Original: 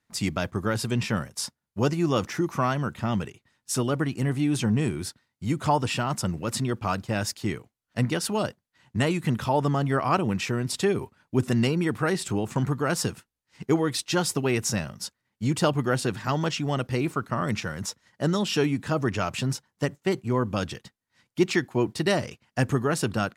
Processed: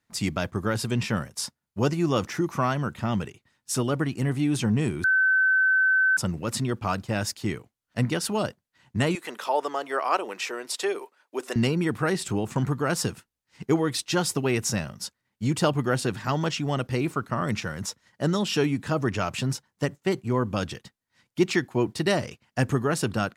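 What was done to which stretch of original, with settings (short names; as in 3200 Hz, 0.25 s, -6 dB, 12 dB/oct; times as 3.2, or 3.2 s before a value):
5.04–6.17 bleep 1530 Hz -17.5 dBFS
9.15–11.56 HPF 400 Hz 24 dB/oct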